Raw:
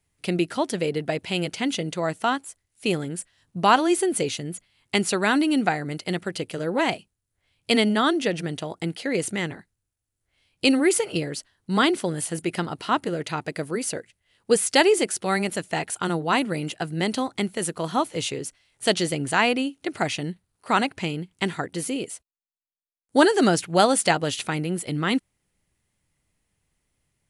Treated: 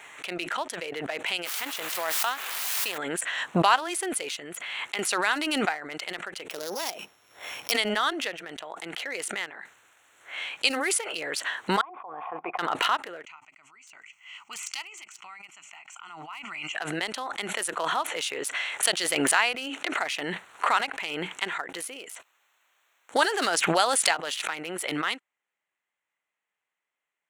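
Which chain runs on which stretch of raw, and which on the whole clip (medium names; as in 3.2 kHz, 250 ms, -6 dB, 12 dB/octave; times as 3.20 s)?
1.45–2.98 s: power-law waveshaper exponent 1.4 + word length cut 6-bit, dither triangular + swell ahead of each attack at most 32 dB/s
4.36–4.99 s: high-pass 59 Hz + compression 10:1, threshold -32 dBFS
6.50–7.72 s: sorted samples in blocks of 8 samples + peaking EQ 1.6 kHz -8.5 dB 1.7 oct + three bands compressed up and down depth 40%
11.81–12.59 s: cascade formant filter a + peaking EQ 640 Hz -10.5 dB 0.55 oct
13.25–16.75 s: amplifier tone stack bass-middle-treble 5-5-5 + static phaser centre 2.5 kHz, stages 8
whole clip: local Wiener filter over 9 samples; high-pass 950 Hz 12 dB/octave; swell ahead of each attack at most 21 dB/s; trim -1 dB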